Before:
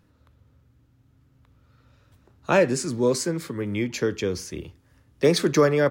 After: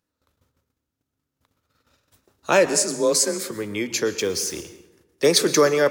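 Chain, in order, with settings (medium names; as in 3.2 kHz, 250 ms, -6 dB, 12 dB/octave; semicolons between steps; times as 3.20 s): 4.19–4.61 s: jump at every zero crossing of -42.5 dBFS; gate -56 dBFS, range -17 dB; tone controls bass -10 dB, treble +9 dB; hum notches 60/120 Hz; filtered feedback delay 204 ms, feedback 37%, low-pass 1.7 kHz, level -18 dB; plate-style reverb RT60 0.62 s, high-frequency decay 0.9×, pre-delay 105 ms, DRR 14.5 dB; 2.66–3.51 s: frequency shift +30 Hz; trim +2.5 dB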